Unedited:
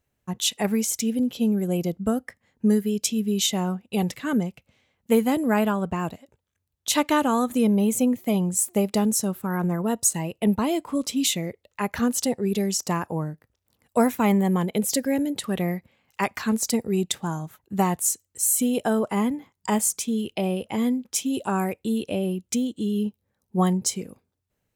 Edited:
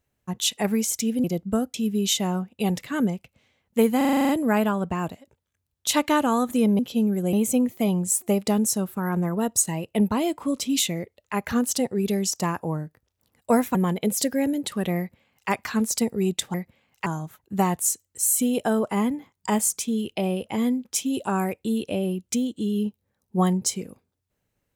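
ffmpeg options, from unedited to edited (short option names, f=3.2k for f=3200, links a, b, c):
-filter_complex "[0:a]asplit=16[a][b][c][d][e][f][g][h][i][j][k][l][m][n][o][p];[a]atrim=end=1.242[q];[b]atrim=start=1.778:end=2.282[r];[c]atrim=start=3.068:end=5.342[s];[d]atrim=start=5.298:end=5.342[t];[e]atrim=start=5.298:end=5.342[u];[f]atrim=start=5.298:end=5.342[v];[g]atrim=start=5.298:end=5.342[w];[h]atrim=start=5.298:end=5.342[x];[i]atrim=start=5.298:end=5.342[y];[j]atrim=start=5.298:end=5.342[z];[k]atrim=start=5.298:end=7.802[aa];[l]atrim=start=1.238:end=1.782[ab];[m]atrim=start=7.798:end=14.222[ac];[n]atrim=start=14.468:end=17.262[ad];[o]atrim=start=15.698:end=16.222[ae];[p]atrim=start=17.258[af];[q][r]acrossfade=d=0.004:c1=hsin:c2=hsin[ag];[ag][s]acrossfade=d=0.004:c1=hsin:c2=hsin[ah];[ah][t]acrossfade=d=0.004:c1=hsin:c2=hsin[ai];[ai][u]acrossfade=d=0.004:c1=hsin:c2=hsin[aj];[aj][v]acrossfade=d=0.004:c1=hsin:c2=hsin[ak];[ak][w]acrossfade=d=0.004:c1=hsin:c2=hsin[al];[al][x]acrossfade=d=0.004:c1=hsin:c2=hsin[am];[am][y]acrossfade=d=0.004:c1=hsin:c2=hsin[an];[an][z]acrossfade=d=0.004:c1=hsin:c2=hsin[ao];[ao][aa]acrossfade=d=0.004:c1=hsin:c2=hsin[ap];[ap][ab]acrossfade=d=0.004:c1=hsin:c2=hsin[aq];[aq][ac]acrossfade=d=0.004:c1=hsin:c2=hsin[ar];[ar][ad]acrossfade=d=0.004:c1=hsin:c2=hsin[as];[as][ae]acrossfade=d=0.004:c1=hsin:c2=hsin[at];[at][af]acrossfade=d=0.004:c1=hsin:c2=hsin"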